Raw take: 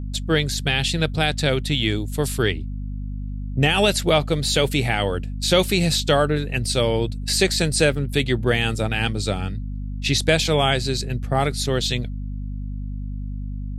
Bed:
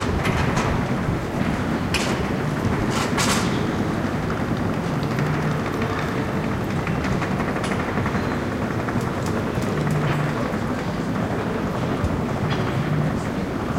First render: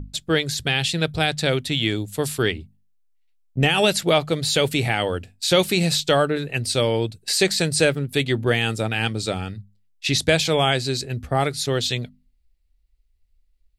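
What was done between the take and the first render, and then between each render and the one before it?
mains-hum notches 50/100/150/200/250 Hz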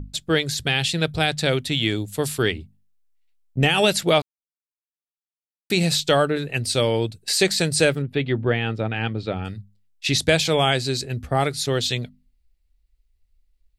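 0:04.22–0:05.70: silence
0:08.02–0:09.45: high-frequency loss of the air 340 metres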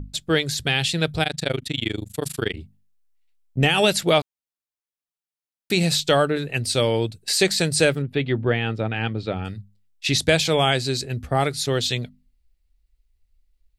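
0:01.23–0:02.57: amplitude modulation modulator 25 Hz, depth 100%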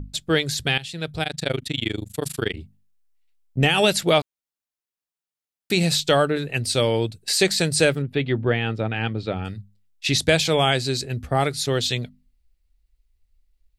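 0:00.78–0:01.51: fade in, from −16 dB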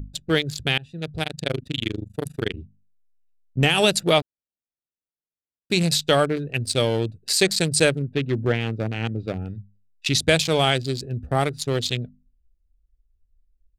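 adaptive Wiener filter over 41 samples
high-shelf EQ 4,500 Hz +5.5 dB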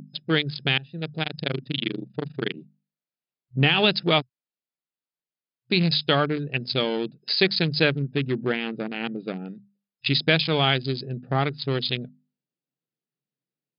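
dynamic equaliser 570 Hz, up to −6 dB, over −34 dBFS, Q 1.9
brick-wall band-pass 120–5,100 Hz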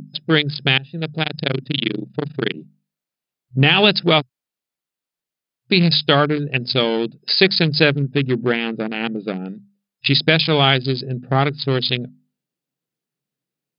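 level +6.5 dB
brickwall limiter −1 dBFS, peak gain reduction 2.5 dB

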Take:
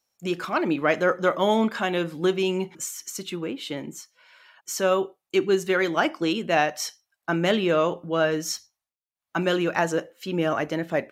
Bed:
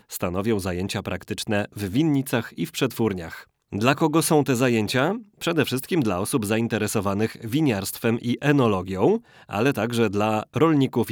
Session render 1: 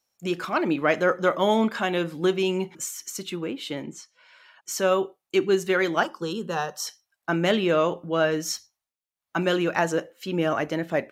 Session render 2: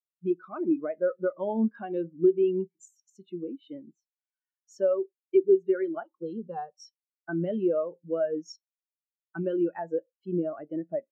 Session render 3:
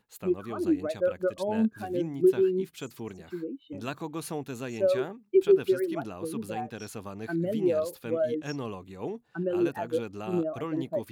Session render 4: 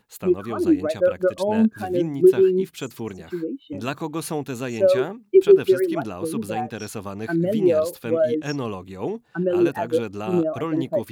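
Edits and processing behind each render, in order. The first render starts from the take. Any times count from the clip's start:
0:03.83–0:04.70: low-pass filter 6,400 Hz → 12,000 Hz; 0:06.03–0:06.87: phaser with its sweep stopped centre 440 Hz, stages 8
downward compressor 5 to 1, threshold −24 dBFS, peak gain reduction 8.5 dB; every bin expanded away from the loudest bin 2.5 to 1
mix in bed −16 dB
level +7.5 dB

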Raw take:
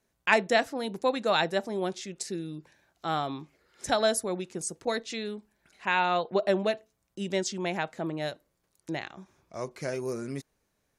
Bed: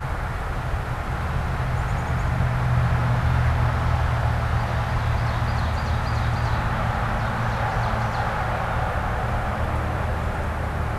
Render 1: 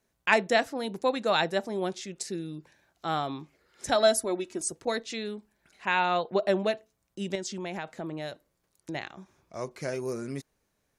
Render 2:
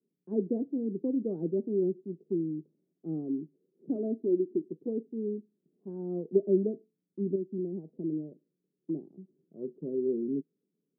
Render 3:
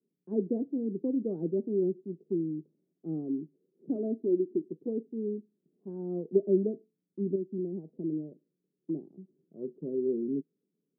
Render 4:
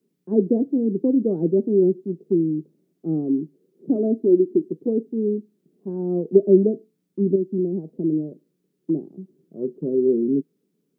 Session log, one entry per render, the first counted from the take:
0:03.95–0:04.72: comb filter 3.1 ms; 0:07.35–0:08.95: downward compressor 3 to 1, threshold −32 dBFS
elliptic band-pass filter 160–420 Hz, stop band 70 dB; dynamic equaliser 300 Hz, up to +7 dB, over −46 dBFS, Q 1.4
no processing that can be heard
level +11 dB; brickwall limiter −3 dBFS, peak gain reduction 1 dB

